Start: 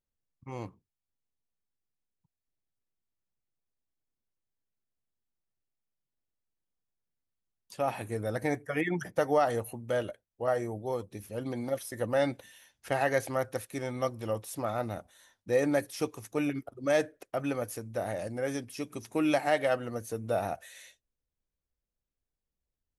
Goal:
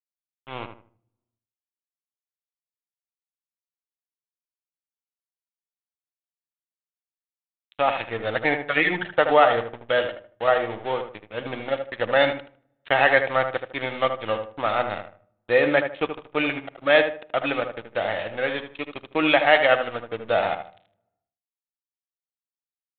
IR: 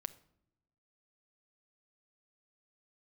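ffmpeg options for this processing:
-filter_complex "[0:a]equalizer=frequency=1100:width=0.32:gain=8,aresample=11025,aeval=exprs='sgn(val(0))*max(abs(val(0))-0.0119,0)':channel_layout=same,aresample=44100,crystalizer=i=8.5:c=0,asplit=2[link_01][link_02];[link_02]adelay=77,lowpass=frequency=1800:poles=1,volume=-7dB,asplit=2[link_03][link_04];[link_04]adelay=77,lowpass=frequency=1800:poles=1,volume=0.3,asplit=2[link_05][link_06];[link_06]adelay=77,lowpass=frequency=1800:poles=1,volume=0.3,asplit=2[link_07][link_08];[link_08]adelay=77,lowpass=frequency=1800:poles=1,volume=0.3[link_09];[link_01][link_03][link_05][link_07][link_09]amix=inputs=5:normalize=0,asplit=2[link_10][link_11];[1:a]atrim=start_sample=2205[link_12];[link_11][link_12]afir=irnorm=-1:irlink=0,volume=-1.5dB[link_13];[link_10][link_13]amix=inputs=2:normalize=0,aresample=8000,aresample=44100,volume=-4.5dB"

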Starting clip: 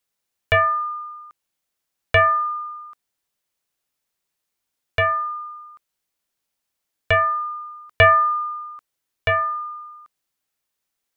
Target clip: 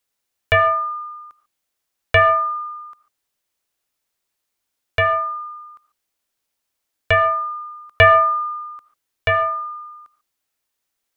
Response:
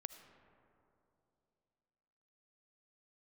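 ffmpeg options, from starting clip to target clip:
-filter_complex "[0:a]equalizer=frequency=170:width=5.2:gain=-8.5[link_01];[1:a]atrim=start_sample=2205,atrim=end_sample=6615[link_02];[link_01][link_02]afir=irnorm=-1:irlink=0,volume=6.5dB"

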